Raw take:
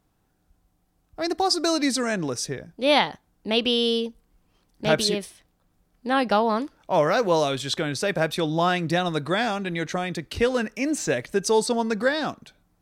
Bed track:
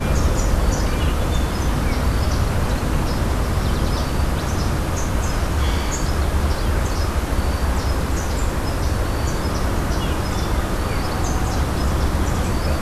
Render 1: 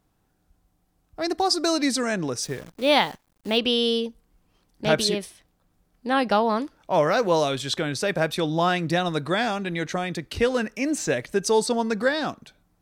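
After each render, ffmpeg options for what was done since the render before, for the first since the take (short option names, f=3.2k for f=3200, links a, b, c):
-filter_complex "[0:a]asettb=1/sr,asplit=3[a][b][c];[a]atrim=end=2.424[d];[b]atrim=start=2.42:end=3.58,asetpts=PTS-STARTPTS,afade=t=in:d=0.004:c=qsin,afade=t=out:st=1.156:d=0.004:c=qsin,acrusher=bits=8:dc=4:mix=0:aa=0.000001[e];[c]atrim=start=3.576[f];[d][e]acrossfade=d=0.004:c1=hsin:c2=qsin[g];[g][f]acrossfade=d=0.004:c1=qsin:c2=hsin"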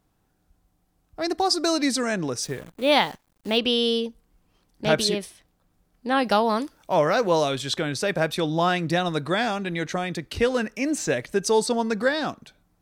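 -filter_complex "[0:a]asettb=1/sr,asplit=3[a][b][c];[a]atrim=end=2.514[d];[b]atrim=start=2.51:end=2.92,asetpts=PTS-STARTPTS,afade=t=in:d=0.004:c=qsin,afade=t=out:st=0.406:d=0.004:c=qsin,equalizer=f=5.3k:w=2.5:g=-7.5[e];[c]atrim=start=2.916[f];[d][e]acrossfade=d=0.004:c1=hsin:c2=qsin[g];[g][f]acrossfade=d=0.004:c1=qsin:c2=hsin,asettb=1/sr,asplit=3[h][i][j];[h]atrim=end=6.244[k];[i]atrim=start=6.24:end=6.94,asetpts=PTS-STARTPTS,afade=t=in:d=0.004:c=qsin,afade=t=out:st=0.696:d=0.004:c=qsin,highshelf=f=5.6k:g=11.5[l];[j]atrim=start=6.936[m];[k][l]acrossfade=d=0.004:c1=hsin:c2=qsin[n];[n][m]acrossfade=d=0.004:c1=qsin:c2=hsin"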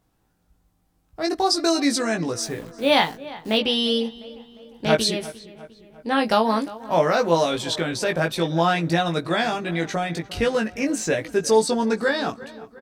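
-filter_complex "[0:a]asplit=2[a][b];[b]adelay=18,volume=-4dB[c];[a][c]amix=inputs=2:normalize=0,asplit=2[d][e];[e]adelay=352,lowpass=f=2.7k:p=1,volume=-17.5dB,asplit=2[f][g];[g]adelay=352,lowpass=f=2.7k:p=1,volume=0.54,asplit=2[h][i];[i]adelay=352,lowpass=f=2.7k:p=1,volume=0.54,asplit=2[j][k];[k]adelay=352,lowpass=f=2.7k:p=1,volume=0.54,asplit=2[l][m];[m]adelay=352,lowpass=f=2.7k:p=1,volume=0.54[n];[d][f][h][j][l][n]amix=inputs=6:normalize=0"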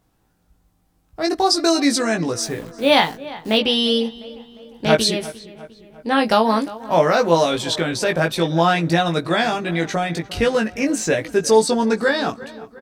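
-af "volume=3.5dB,alimiter=limit=-3dB:level=0:latency=1"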